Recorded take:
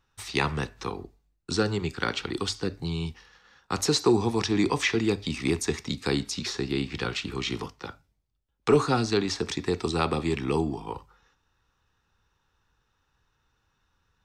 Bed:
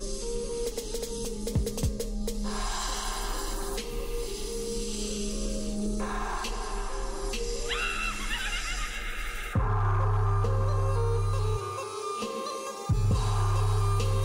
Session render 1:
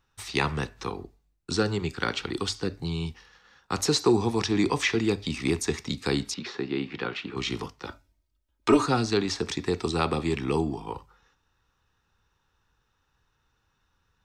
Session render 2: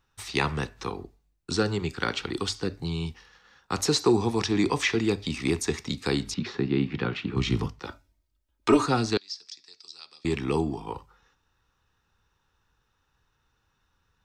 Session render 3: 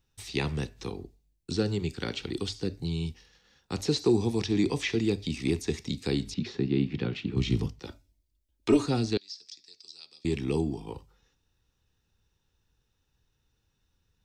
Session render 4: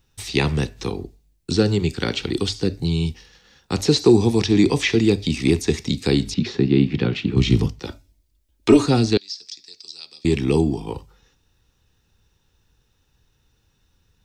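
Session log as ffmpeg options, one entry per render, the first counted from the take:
-filter_complex "[0:a]asettb=1/sr,asplit=3[a][b][c];[a]atrim=end=6.344[d];[b]atrim=start=6.34:end=7.37,asetpts=PTS-STARTPTS,afade=t=in:d=0.004:c=qsin,afade=t=out:st=1.026:d=0.004:c=qsin,highpass=180,lowpass=2.9k[e];[c]atrim=start=7.366[f];[d][e]acrossfade=d=0.004:c1=hsin:c2=qsin[g];[g][f]acrossfade=d=0.004:c1=qsin:c2=hsin,asettb=1/sr,asplit=3[h][i][j];[h]atrim=end=7.874[k];[i]atrim=start=7.87:end=8.86,asetpts=PTS-STARTPTS,afade=t=in:d=0.004:c=qsin,afade=t=out:st=0.986:d=0.004:c=qsin,aecho=1:1:3.2:0.88,atrim=end_sample=43659[l];[j]atrim=start=8.856[m];[k][l]acrossfade=d=0.004:c1=hsin:c2=qsin[n];[n][m]acrossfade=d=0.004:c1=qsin:c2=hsin"
-filter_complex "[0:a]asettb=1/sr,asplit=3[a][b][c];[a]atrim=end=6.244[d];[b]atrim=start=6.24:end=7.8,asetpts=PTS-STARTPTS,afade=t=in:d=0.004:c=qsin,afade=t=out:st=1.556:d=0.004:c=qsin,bass=f=250:g=12,treble=f=4k:g=-2[e];[c]atrim=start=7.796[f];[d][e]acrossfade=d=0.004:c1=hsin:c2=qsin[g];[g][f]acrossfade=d=0.004:c1=qsin:c2=hsin,asettb=1/sr,asplit=3[h][i][j];[h]atrim=end=9.174[k];[i]atrim=start=9.17:end=10.25,asetpts=PTS-STARTPTS,afade=t=in:d=0.004:c=qsin,afade=t=out:st=1.076:d=0.004:c=qsin,bandpass=f=5k:t=q:w=6.3[l];[j]atrim=start=10.246[m];[k][l]acrossfade=d=0.004:c1=hsin:c2=qsin[n];[n][m]acrossfade=d=0.004:c1=qsin:c2=hsin"
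-filter_complex "[0:a]acrossover=split=4500[a][b];[b]acompressor=threshold=-42dB:ratio=4:attack=1:release=60[c];[a][c]amix=inputs=2:normalize=0,equalizer=f=1.2k:w=0.89:g=-13.5"
-af "volume=10dB,alimiter=limit=-2dB:level=0:latency=1"

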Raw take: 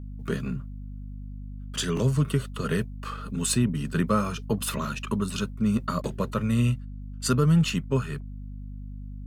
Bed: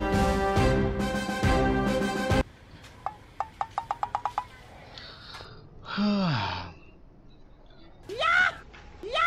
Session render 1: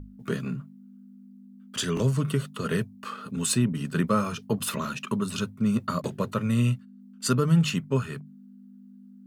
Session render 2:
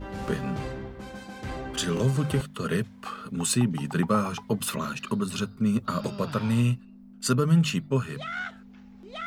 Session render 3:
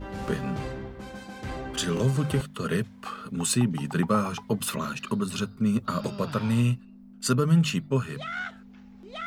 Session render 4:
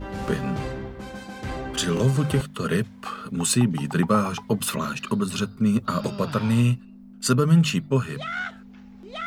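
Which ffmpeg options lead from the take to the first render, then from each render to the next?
-af "bandreject=f=50:t=h:w=6,bandreject=f=100:t=h:w=6,bandreject=f=150:t=h:w=6"
-filter_complex "[1:a]volume=-11.5dB[a];[0:a][a]amix=inputs=2:normalize=0"
-af anull
-af "volume=3.5dB"

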